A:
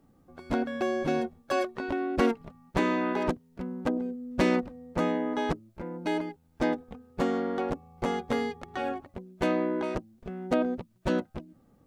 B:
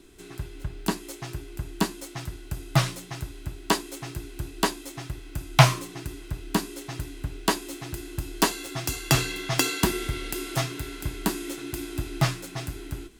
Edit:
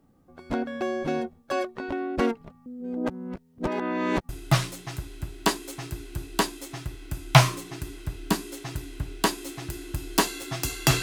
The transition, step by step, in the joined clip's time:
A
0:02.66–0:04.29: reverse
0:04.29: continue with B from 0:02.53

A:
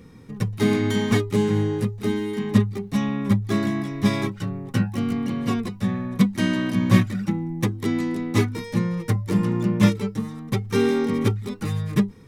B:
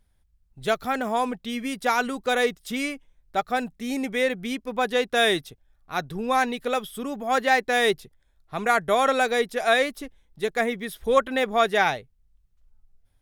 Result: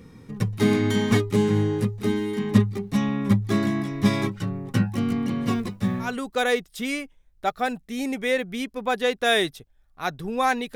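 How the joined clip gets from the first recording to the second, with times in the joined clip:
A
0:05.45–0:06.17: mu-law and A-law mismatch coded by A
0:06.08: continue with B from 0:01.99, crossfade 0.18 s

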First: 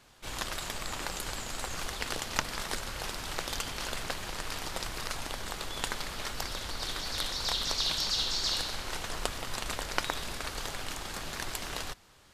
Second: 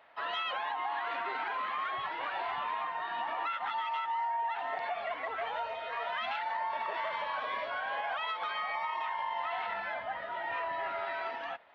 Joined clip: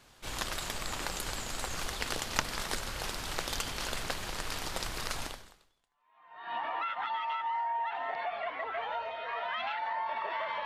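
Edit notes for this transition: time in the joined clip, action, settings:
first
0:05.89: continue with second from 0:02.53, crossfade 1.28 s exponential

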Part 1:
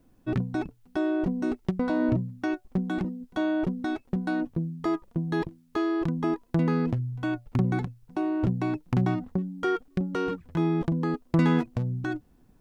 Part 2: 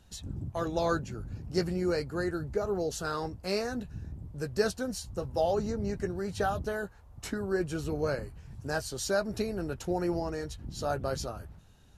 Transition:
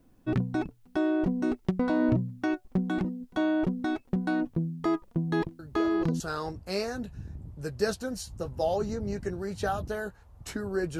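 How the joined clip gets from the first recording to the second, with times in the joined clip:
part 1
0:05.59: mix in part 2 from 0:02.36 0.61 s −8.5 dB
0:06.20: continue with part 2 from 0:02.97

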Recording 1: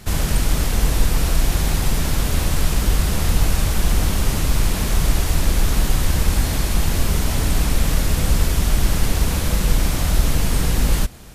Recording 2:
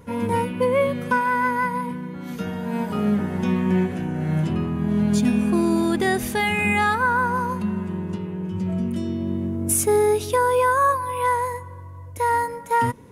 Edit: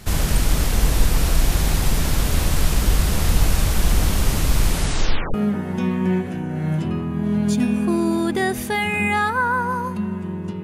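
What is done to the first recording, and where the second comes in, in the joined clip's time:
recording 1
0:04.70: tape stop 0.64 s
0:05.34: continue with recording 2 from 0:02.99

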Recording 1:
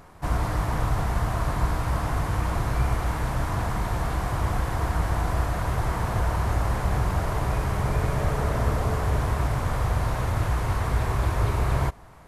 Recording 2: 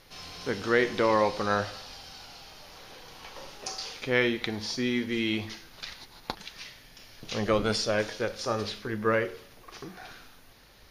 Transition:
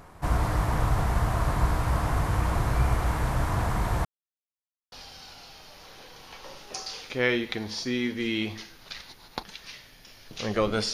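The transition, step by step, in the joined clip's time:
recording 1
0:04.05–0:04.92: silence
0:04.92: continue with recording 2 from 0:01.84

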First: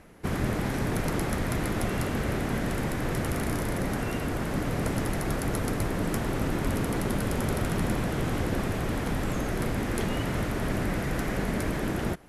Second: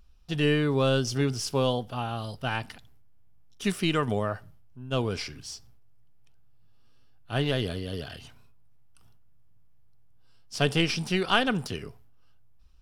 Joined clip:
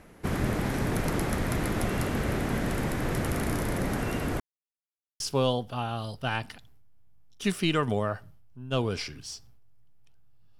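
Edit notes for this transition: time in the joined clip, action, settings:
first
0:04.40–0:05.20: silence
0:05.20: continue with second from 0:01.40

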